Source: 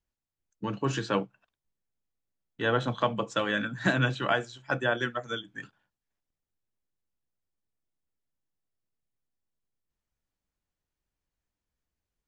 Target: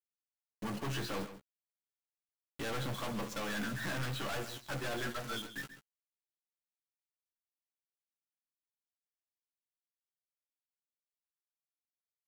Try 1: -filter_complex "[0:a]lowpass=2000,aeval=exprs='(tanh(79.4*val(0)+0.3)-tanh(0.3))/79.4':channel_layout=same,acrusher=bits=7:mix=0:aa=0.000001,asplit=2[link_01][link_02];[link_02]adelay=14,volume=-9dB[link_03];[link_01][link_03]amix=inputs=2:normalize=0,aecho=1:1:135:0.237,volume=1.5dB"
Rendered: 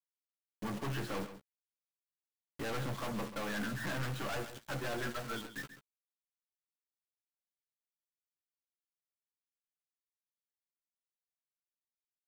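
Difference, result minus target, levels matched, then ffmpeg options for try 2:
4,000 Hz band −3.0 dB
-filter_complex "[0:a]lowpass=5600,aeval=exprs='(tanh(79.4*val(0)+0.3)-tanh(0.3))/79.4':channel_layout=same,acrusher=bits=7:mix=0:aa=0.000001,asplit=2[link_01][link_02];[link_02]adelay=14,volume=-9dB[link_03];[link_01][link_03]amix=inputs=2:normalize=0,aecho=1:1:135:0.237,volume=1.5dB"

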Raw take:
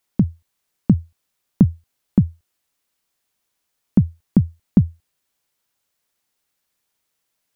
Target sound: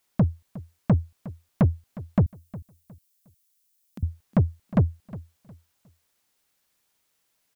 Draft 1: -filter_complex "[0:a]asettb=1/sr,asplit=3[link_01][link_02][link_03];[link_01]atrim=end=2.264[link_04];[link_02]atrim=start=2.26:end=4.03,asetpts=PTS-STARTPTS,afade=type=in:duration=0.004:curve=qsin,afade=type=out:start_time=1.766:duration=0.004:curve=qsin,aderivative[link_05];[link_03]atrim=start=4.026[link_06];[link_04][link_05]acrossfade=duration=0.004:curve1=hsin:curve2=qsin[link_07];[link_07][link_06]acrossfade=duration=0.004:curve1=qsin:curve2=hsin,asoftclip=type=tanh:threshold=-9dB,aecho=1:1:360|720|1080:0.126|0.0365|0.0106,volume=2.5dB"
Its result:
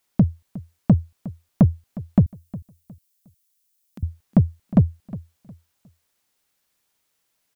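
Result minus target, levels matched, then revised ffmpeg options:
soft clipping: distortion −7 dB
-filter_complex "[0:a]asettb=1/sr,asplit=3[link_01][link_02][link_03];[link_01]atrim=end=2.264[link_04];[link_02]atrim=start=2.26:end=4.03,asetpts=PTS-STARTPTS,afade=type=in:duration=0.004:curve=qsin,afade=type=out:start_time=1.766:duration=0.004:curve=qsin,aderivative[link_05];[link_03]atrim=start=4.026[link_06];[link_04][link_05]acrossfade=duration=0.004:curve1=hsin:curve2=qsin[link_07];[link_07][link_06]acrossfade=duration=0.004:curve1=qsin:curve2=hsin,asoftclip=type=tanh:threshold=-16.5dB,aecho=1:1:360|720|1080:0.126|0.0365|0.0106,volume=2.5dB"

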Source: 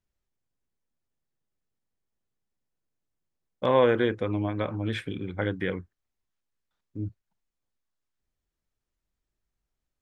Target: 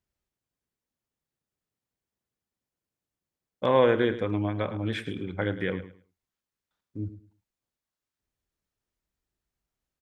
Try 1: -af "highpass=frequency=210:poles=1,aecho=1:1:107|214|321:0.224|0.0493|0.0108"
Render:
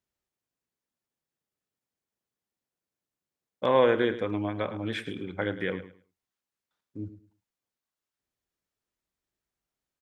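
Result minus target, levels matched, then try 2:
125 Hz band −5.0 dB
-af "highpass=frequency=55:poles=1,aecho=1:1:107|214|321:0.224|0.0493|0.0108"

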